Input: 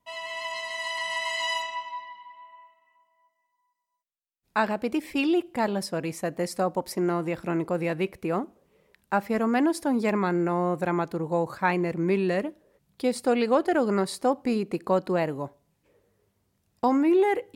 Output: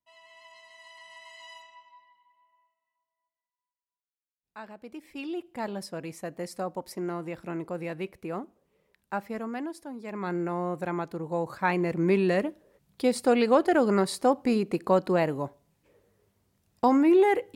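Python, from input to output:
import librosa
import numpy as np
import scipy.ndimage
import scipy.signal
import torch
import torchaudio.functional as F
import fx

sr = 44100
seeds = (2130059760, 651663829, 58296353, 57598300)

y = fx.gain(x, sr, db=fx.line((4.59, -19.0), (5.69, -7.0), (9.18, -7.0), (10.02, -16.0), (10.3, -5.0), (11.23, -5.0), (12.05, 1.0)))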